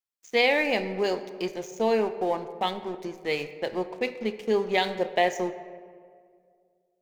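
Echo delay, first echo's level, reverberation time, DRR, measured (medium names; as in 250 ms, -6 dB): no echo, no echo, 2.1 s, 10.0 dB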